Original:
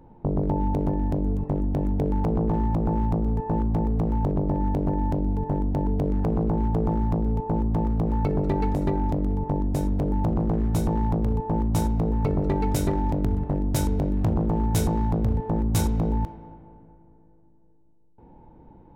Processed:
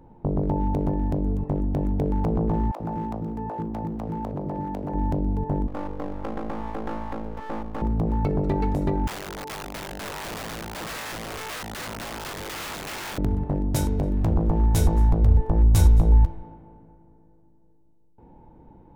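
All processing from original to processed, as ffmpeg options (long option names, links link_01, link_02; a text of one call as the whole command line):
ffmpeg -i in.wav -filter_complex "[0:a]asettb=1/sr,asplit=3[link_01][link_02][link_03];[link_01]atrim=end=2.714[link_04];[link_02]atrim=start=2.71:end=4.94,asetpts=PTS-STARTPTS,afade=type=in:duration=0.004:curve=qsin,afade=type=out:start_time=2.226:duration=0.004:curve=qsin,highpass=frequency=270:poles=1,bandreject=frequency=1100:width=27,acrossover=split=440[link_05][link_06];[link_05]adelay=90[link_07];[link_07][link_06]amix=inputs=2:normalize=0,atrim=end_sample=98343[link_08];[link_03]atrim=start=4.936[link_09];[link_04][link_08]acrossfade=duration=0.004:curve1=hsin:curve2=qsin[link_10];[link_10][link_09]acrossfade=duration=0.004:curve1=qsin:curve2=hsin,asettb=1/sr,asplit=3[link_11][link_12][link_13];[link_11]atrim=end=5.674[link_14];[link_12]atrim=start=5.67:end=7.82,asetpts=PTS-STARTPTS,afade=type=in:duration=0.004:curve=qsin,afade=type=out:start_time=2.146:duration=0.004:curve=qsin,bass=frequency=250:gain=-11,treble=frequency=4000:gain=-5,aecho=1:1:3.7:0.89,atrim=end_sample=94815,aeval=exprs='max(val(0),0)':channel_layout=same[link_15];[link_13]atrim=start=7.816[link_16];[link_14][link_15]acrossfade=duration=0.004:curve1=hsin:curve2=qsin[link_17];[link_17][link_16]acrossfade=duration=0.004:curve1=qsin:curve2=hsin,asettb=1/sr,asplit=3[link_18][link_19][link_20];[link_18]atrim=end=9.074[link_21];[link_19]atrim=start=9.07:end=13.18,asetpts=PTS-STARTPTS,afade=type=in:duration=0.004:curve=qsin,afade=type=out:start_time=4.106:duration=0.004:curve=qsin,bandpass=frequency=610:width_type=q:width=0.76,aeval=exprs='(mod(28.2*val(0)+1,2)-1)/28.2':channel_layout=same[link_22];[link_20]atrim=start=13.176[link_23];[link_21][link_22]acrossfade=duration=0.004:curve1=hsin:curve2=qsin[link_24];[link_24][link_23]acrossfade=duration=0.004:curve1=qsin:curve2=hsin,asettb=1/sr,asplit=3[link_25][link_26][link_27];[link_25]atrim=end=13.814[link_28];[link_26]atrim=start=13.81:end=16.43,asetpts=PTS-STARTPTS,afade=type=in:duration=0.004:curve=qsin,afade=type=out:start_time=2.616:duration=0.004:curve=qsin,asplit=2[link_29][link_30];[link_30]adelay=12,volume=-12.5dB[link_31];[link_29][link_31]amix=inputs=2:normalize=0,atrim=end_sample=115542,aecho=1:1:219:0.0708,atrim=end_sample=115542,asubboost=boost=11:cutoff=69[link_32];[link_27]atrim=start=16.426[link_33];[link_28][link_32]acrossfade=duration=0.004:curve1=hsin:curve2=qsin[link_34];[link_34][link_33]acrossfade=duration=0.004:curve1=qsin:curve2=hsin" out.wav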